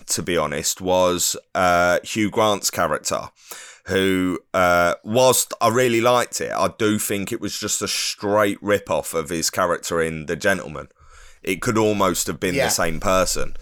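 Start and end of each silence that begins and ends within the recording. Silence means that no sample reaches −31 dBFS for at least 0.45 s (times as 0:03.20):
0:10.84–0:11.45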